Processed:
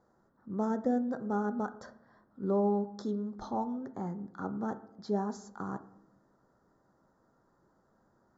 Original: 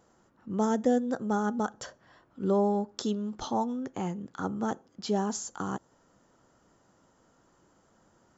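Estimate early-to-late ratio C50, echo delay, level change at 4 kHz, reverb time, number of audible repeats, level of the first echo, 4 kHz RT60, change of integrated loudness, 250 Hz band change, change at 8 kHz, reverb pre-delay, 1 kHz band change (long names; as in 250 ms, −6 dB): 16.0 dB, no echo audible, −14.5 dB, 0.90 s, no echo audible, no echo audible, 0.55 s, −3.5 dB, −3.5 dB, can't be measured, 5 ms, −4.5 dB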